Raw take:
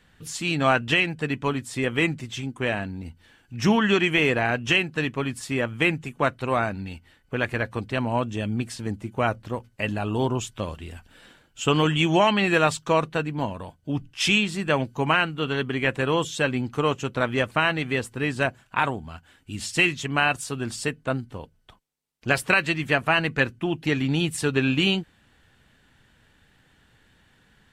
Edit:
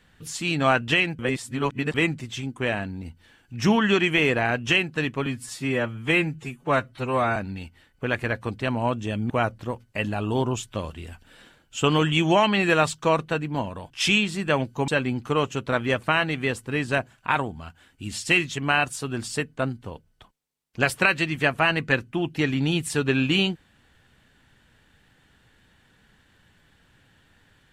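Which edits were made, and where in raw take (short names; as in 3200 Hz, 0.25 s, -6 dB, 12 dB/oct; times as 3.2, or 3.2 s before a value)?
1.19–1.94 reverse
5.26–6.66 stretch 1.5×
8.6–9.14 cut
13.74–14.1 cut
15.08–16.36 cut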